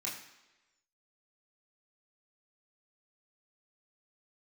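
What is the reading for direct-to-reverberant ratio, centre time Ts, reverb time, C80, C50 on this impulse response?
-5.5 dB, 38 ms, 1.1 s, 9.0 dB, 6.5 dB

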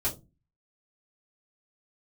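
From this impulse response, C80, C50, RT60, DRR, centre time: 18.5 dB, 14.5 dB, 0.25 s, -9.0 dB, 16 ms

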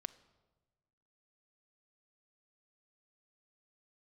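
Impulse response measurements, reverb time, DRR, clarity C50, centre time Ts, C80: 1.3 s, 11.5 dB, 17.5 dB, 4 ms, 19.0 dB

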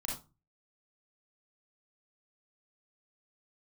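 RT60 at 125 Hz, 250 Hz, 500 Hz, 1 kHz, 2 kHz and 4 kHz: 0.50 s, 0.40 s, 0.30 s, 0.30 s, 0.20 s, 0.20 s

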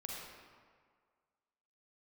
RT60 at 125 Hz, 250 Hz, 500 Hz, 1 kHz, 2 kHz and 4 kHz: 1.6 s, 1.6 s, 1.8 s, 1.9 s, 1.5 s, 1.1 s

